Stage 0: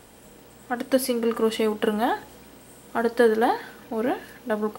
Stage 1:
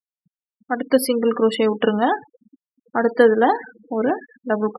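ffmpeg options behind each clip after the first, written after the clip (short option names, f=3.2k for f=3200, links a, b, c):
-af "afftfilt=real='re*gte(hypot(re,im),0.0316)':imag='im*gte(hypot(re,im),0.0316)':win_size=1024:overlap=0.75,volume=5dB"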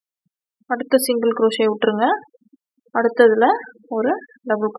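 -af "bass=f=250:g=-6,treble=f=4k:g=1,volume=2dB"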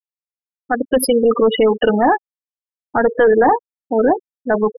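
-af "afftfilt=real='re*gte(hypot(re,im),0.2)':imag='im*gte(hypot(re,im),0.2)':win_size=1024:overlap=0.75,apsyclip=13.5dB,volume=-7dB"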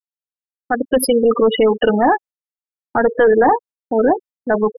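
-af "agate=range=-41dB:threshold=-34dB:ratio=16:detection=peak"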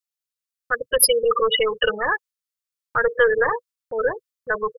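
-af "firequalizer=gain_entry='entry(140,0);entry(240,-29);entry(490,-1);entry(760,-20);entry(1100,4);entry(1600,3);entry(4400,8)':delay=0.05:min_phase=1,volume=-1.5dB"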